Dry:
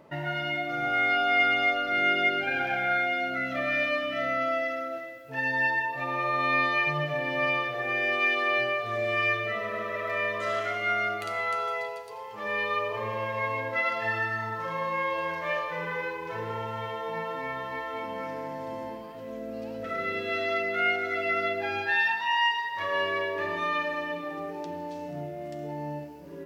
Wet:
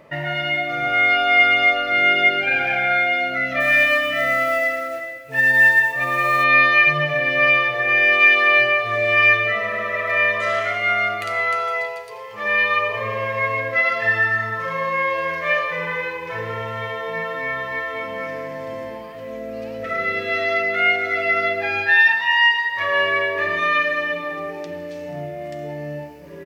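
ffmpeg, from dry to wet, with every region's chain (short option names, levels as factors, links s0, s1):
-filter_complex "[0:a]asettb=1/sr,asplit=3[s0][s1][s2];[s0]atrim=end=3.604[s3];[s1]atrim=start=3.6:end=6.44,asetpts=PTS-STARTPTS,afade=t=in:d=0.004:c=qsin,afade=t=out:st=2.836:d=0.004:c=qsin,acrusher=bits=5:mode=log:mix=0:aa=0.000001,asplit=2[s4][s5];[s5]adelay=14,volume=0.224[s6];[s4][s6]amix=inputs=2:normalize=0,atrim=end_sample=125244[s7];[s2]atrim=start=6.436[s8];[s3][s7]acrossfade=d=0.004:c1=hsin:c2=qsin[s9];[s9][s8]acrossfade=d=0.004:c1=qsin:c2=hsin,equalizer=f=2100:w=2.1:g=7,aecho=1:1:1.7:0.3,bandreject=f=46.48:t=h:w=4,bandreject=f=92.96:t=h:w=4,bandreject=f=139.44:t=h:w=4,bandreject=f=185.92:t=h:w=4,bandreject=f=232.4:t=h:w=4,bandreject=f=278.88:t=h:w=4,bandreject=f=325.36:t=h:w=4,bandreject=f=371.84:t=h:w=4,bandreject=f=418.32:t=h:w=4,bandreject=f=464.8:t=h:w=4,bandreject=f=511.28:t=h:w=4,bandreject=f=557.76:t=h:w=4,bandreject=f=604.24:t=h:w=4,bandreject=f=650.72:t=h:w=4,bandreject=f=697.2:t=h:w=4,bandreject=f=743.68:t=h:w=4,bandreject=f=790.16:t=h:w=4,bandreject=f=836.64:t=h:w=4,bandreject=f=883.12:t=h:w=4,bandreject=f=929.6:t=h:w=4,bandreject=f=976.08:t=h:w=4,bandreject=f=1022.56:t=h:w=4,bandreject=f=1069.04:t=h:w=4,bandreject=f=1115.52:t=h:w=4,bandreject=f=1162:t=h:w=4,bandreject=f=1208.48:t=h:w=4,bandreject=f=1254.96:t=h:w=4,bandreject=f=1301.44:t=h:w=4,bandreject=f=1347.92:t=h:w=4,bandreject=f=1394.4:t=h:w=4,bandreject=f=1440.88:t=h:w=4,bandreject=f=1487.36:t=h:w=4,bandreject=f=1533.84:t=h:w=4,bandreject=f=1580.32:t=h:w=4,volume=1.88"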